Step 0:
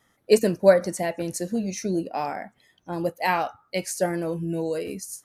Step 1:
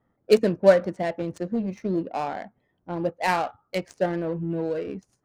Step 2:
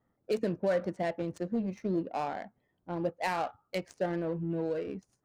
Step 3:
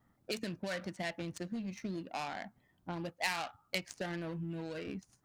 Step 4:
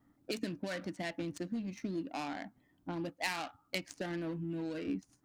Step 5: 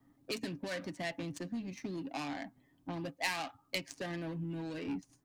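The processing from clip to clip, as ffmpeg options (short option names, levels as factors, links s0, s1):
-af "adynamicsmooth=sensitivity=3:basefreq=950"
-af "alimiter=limit=0.168:level=0:latency=1:release=92,volume=0.562"
-filter_complex "[0:a]equalizer=f=470:w=1.5:g=-9.5,acrossover=split=2100[s0][s1];[s0]acompressor=threshold=0.00562:ratio=5[s2];[s2][s1]amix=inputs=2:normalize=0,volume=2.11"
-af "equalizer=f=290:w=4.1:g=14,volume=0.841"
-filter_complex "[0:a]bandreject=f=1400:w=8.7,aecho=1:1:7.4:0.37,acrossover=split=190|880[s0][s1][s2];[s1]asoftclip=type=tanh:threshold=0.0126[s3];[s0][s3][s2]amix=inputs=3:normalize=0,volume=1.12"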